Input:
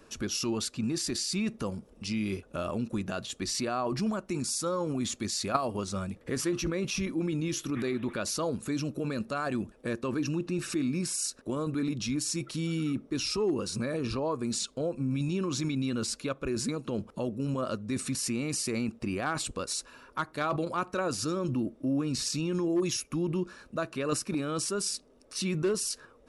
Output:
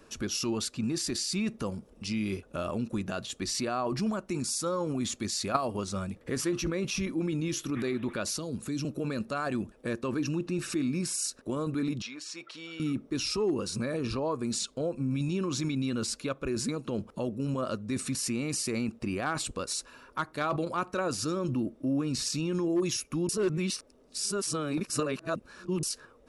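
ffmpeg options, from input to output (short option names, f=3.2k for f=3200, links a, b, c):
-filter_complex "[0:a]asettb=1/sr,asplit=3[a][b][c];[a]atrim=end=8.334[d];[b]atrim=start=8.33:end=8.85,asetpts=PTS-STARTPTS,afade=t=in:d=0.004:c=qsin,afade=t=out:st=0.516:d=0.004:c=qsin,acrossover=split=360|3000[e][f][g];[f]acompressor=threshold=-46dB:ratio=4:attack=3.2:release=140:knee=2.83:detection=peak[h];[e][h][g]amix=inputs=3:normalize=0[i];[c]atrim=start=8.846[j];[d][i]acrossfade=d=0.004:c1=hsin:c2=qsin[k];[k][j]acrossfade=d=0.004:c1=qsin:c2=hsin,asettb=1/sr,asplit=3[l][m][n];[l]atrim=end=12.024[o];[m]atrim=start=12.02:end=12.8,asetpts=PTS-STARTPTS,afade=t=in:d=0.004:c=qsin,afade=t=out:st=0.776:d=0.004:c=qsin,highpass=630,lowpass=4k[p];[n]atrim=start=12.796[q];[o][p]acrossfade=d=0.004:c1=hsin:c2=qsin[r];[r][q]acrossfade=d=0.004:c1=qsin:c2=hsin,asplit=3[s][t][u];[s]atrim=end=23.292[v];[t]atrim=start=23.288:end=25.832,asetpts=PTS-STARTPTS,areverse[w];[u]atrim=start=25.828[x];[v][w]acrossfade=d=0.004:c1=hsin:c2=hsin[y];[y][x]acrossfade=d=0.004:c1=hsin:c2=hsin"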